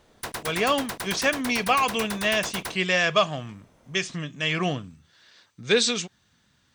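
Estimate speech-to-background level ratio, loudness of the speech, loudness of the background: 9.0 dB, −24.5 LKFS, −33.5 LKFS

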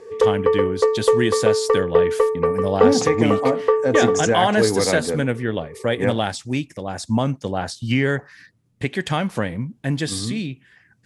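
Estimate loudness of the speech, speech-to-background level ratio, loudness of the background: −22.5 LKFS, −3.0 dB, −19.5 LKFS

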